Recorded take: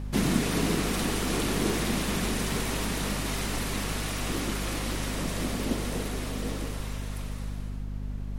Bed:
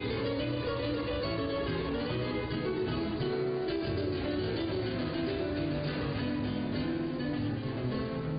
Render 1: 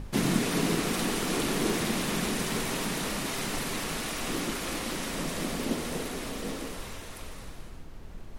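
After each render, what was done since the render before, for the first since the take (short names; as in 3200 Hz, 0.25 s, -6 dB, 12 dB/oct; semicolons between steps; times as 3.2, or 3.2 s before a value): notches 50/100/150/200/250 Hz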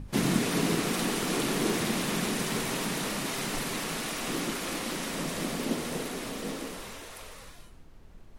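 noise print and reduce 8 dB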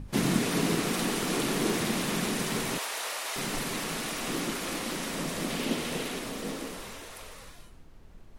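2.78–3.36 HPF 550 Hz 24 dB/oct; 5.5–6.19 bell 2900 Hz +5.5 dB 1.1 oct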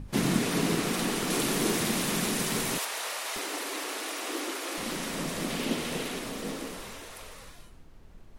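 1.3–2.85 high shelf 5500 Hz +5.5 dB; 3.38–4.78 elliptic high-pass 300 Hz, stop band 60 dB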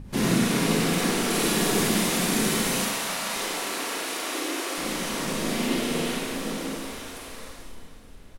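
feedback echo 0.436 s, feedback 54%, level -16 dB; Schroeder reverb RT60 0.96 s, combs from 33 ms, DRR -2.5 dB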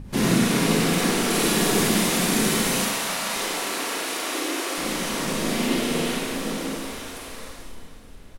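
gain +2.5 dB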